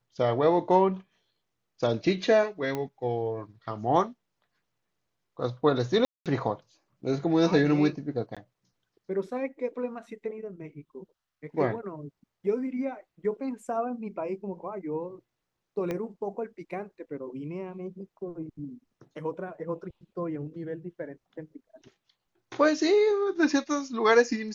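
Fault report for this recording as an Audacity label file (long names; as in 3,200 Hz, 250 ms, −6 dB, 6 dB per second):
2.750000	2.750000	click −18 dBFS
6.050000	6.260000	drop-out 207 ms
8.350000	8.370000	drop-out 16 ms
15.910000	15.910000	click −19 dBFS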